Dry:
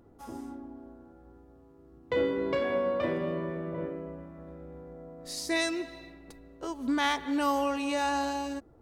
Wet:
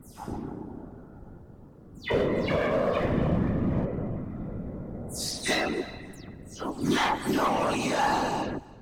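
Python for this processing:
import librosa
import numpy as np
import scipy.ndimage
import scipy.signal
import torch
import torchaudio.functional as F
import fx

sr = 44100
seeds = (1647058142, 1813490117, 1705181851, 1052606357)

p1 = fx.spec_delay(x, sr, highs='early', ms=170)
p2 = fx.highpass(p1, sr, hz=99.0, slope=6)
p3 = fx.low_shelf_res(p2, sr, hz=210.0, db=10.5, q=1.5)
p4 = 10.0 ** (-28.0 / 20.0) * (np.abs((p3 / 10.0 ** (-28.0 / 20.0) + 3.0) % 4.0 - 2.0) - 1.0)
p5 = p3 + (p4 * librosa.db_to_amplitude(-4.0))
p6 = fx.whisperise(p5, sr, seeds[0])
p7 = p6 + fx.echo_feedback(p6, sr, ms=292, feedback_pct=29, wet_db=-23.0, dry=0)
y = p7 * librosa.db_to_amplitude(1.0)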